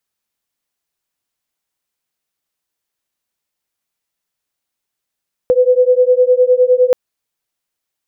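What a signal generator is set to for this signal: beating tones 497 Hz, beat 9.8 Hz, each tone -11 dBFS 1.43 s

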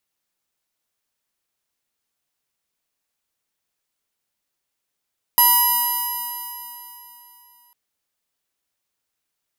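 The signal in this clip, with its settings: stretched partials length 2.35 s, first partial 964 Hz, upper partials -14/-11/-19/-9.5/-16.5/-17.5/-18.5/-10.5/-5/4/-10/-20 dB, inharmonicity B 0.0034, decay 3.21 s, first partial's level -16 dB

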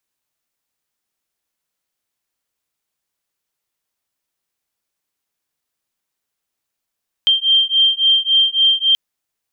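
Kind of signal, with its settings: beating tones 3160 Hz, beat 3.6 Hz, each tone -14.5 dBFS 1.68 s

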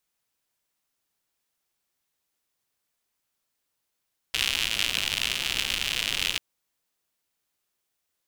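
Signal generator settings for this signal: rain from filtered ticks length 2.04 s, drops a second 130, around 2900 Hz, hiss -12.5 dB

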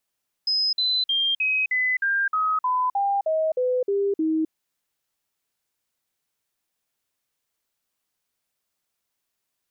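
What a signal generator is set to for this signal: stepped sine 5070 Hz down, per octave 3, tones 13, 0.26 s, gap 0.05 s -19.5 dBFS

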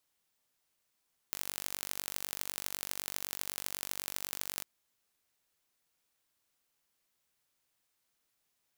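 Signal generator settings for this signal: pulse train 48/s, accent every 4, -7 dBFS 3.30 s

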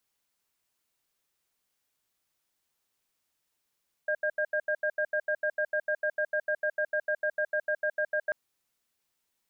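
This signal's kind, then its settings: cadence 608 Hz, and 1610 Hz, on 0.07 s, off 0.08 s, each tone -28 dBFS 4.24 s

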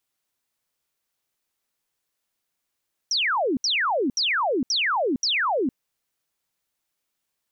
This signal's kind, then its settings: burst of laser zaps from 6000 Hz, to 230 Hz, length 0.46 s sine, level -20 dB, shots 5, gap 0.07 s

